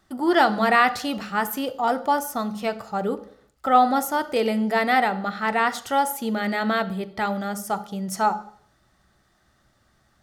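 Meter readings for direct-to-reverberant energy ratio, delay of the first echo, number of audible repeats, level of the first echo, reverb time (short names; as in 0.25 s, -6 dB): 11.0 dB, none, none, none, 0.60 s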